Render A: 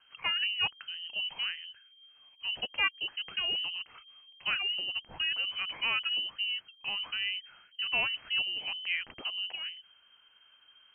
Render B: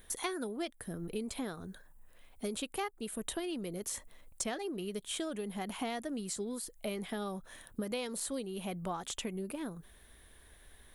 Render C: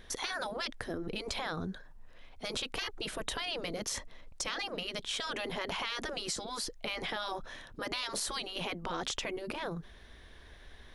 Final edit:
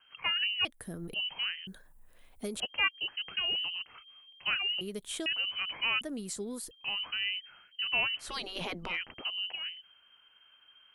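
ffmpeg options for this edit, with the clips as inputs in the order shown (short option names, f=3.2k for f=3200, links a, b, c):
-filter_complex "[1:a]asplit=4[a][b][c][d];[0:a]asplit=6[e][f][g][h][i][j];[e]atrim=end=0.652[k];[a]atrim=start=0.648:end=1.142[l];[f]atrim=start=1.138:end=1.672[m];[b]atrim=start=1.668:end=2.602[n];[g]atrim=start=2.598:end=4.812[o];[c]atrim=start=4.808:end=5.262[p];[h]atrim=start=5.258:end=6.012[q];[d]atrim=start=6.008:end=6.712[r];[i]atrim=start=6.708:end=8.35[s];[2:a]atrim=start=8.19:end=8.99[t];[j]atrim=start=8.83[u];[k][l]acrossfade=d=0.004:c1=hsin:c2=hsin[v];[v][m]acrossfade=d=0.004:c1=hsin:c2=hsin[w];[w][n]acrossfade=d=0.004:c1=hsin:c2=hsin[x];[x][o]acrossfade=d=0.004:c1=hsin:c2=hsin[y];[y][p]acrossfade=d=0.004:c1=hsin:c2=hsin[z];[z][q]acrossfade=d=0.004:c1=hsin:c2=hsin[aa];[aa][r]acrossfade=d=0.004:c1=hsin:c2=hsin[ab];[ab][s]acrossfade=d=0.004:c1=hsin:c2=hsin[ac];[ac][t]acrossfade=d=0.16:c1=tri:c2=tri[ad];[ad][u]acrossfade=d=0.16:c1=tri:c2=tri"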